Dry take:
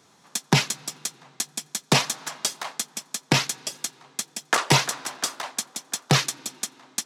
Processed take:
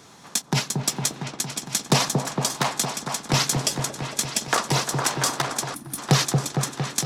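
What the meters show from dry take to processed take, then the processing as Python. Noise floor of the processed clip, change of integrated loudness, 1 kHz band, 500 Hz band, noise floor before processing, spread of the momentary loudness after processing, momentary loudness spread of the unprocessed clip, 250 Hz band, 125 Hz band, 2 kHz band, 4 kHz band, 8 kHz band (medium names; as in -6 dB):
-47 dBFS, +1.5 dB, +2.0 dB, +2.5 dB, -59 dBFS, 8 LU, 12 LU, +2.5 dB, +3.5 dB, -1.5 dB, +0.5 dB, +3.0 dB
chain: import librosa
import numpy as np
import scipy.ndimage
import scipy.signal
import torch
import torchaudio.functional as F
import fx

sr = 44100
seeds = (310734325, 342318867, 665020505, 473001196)

p1 = fx.dynamic_eq(x, sr, hz=2400.0, q=0.95, threshold_db=-35.0, ratio=4.0, max_db=-6)
p2 = fx.chopper(p1, sr, hz=1.2, depth_pct=60, duty_pct=50)
p3 = fx.over_compress(p2, sr, threshold_db=-29.0, ratio=-0.5)
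p4 = p2 + F.gain(torch.from_numpy(p3), 1.0).numpy()
p5 = fx.low_shelf(p4, sr, hz=84.0, db=7.0)
p6 = p5 + fx.echo_opening(p5, sr, ms=229, hz=750, octaves=1, feedback_pct=70, wet_db=-3, dry=0)
y = fx.spec_box(p6, sr, start_s=5.74, length_s=0.24, low_hz=350.0, high_hz=8800.0, gain_db=-16)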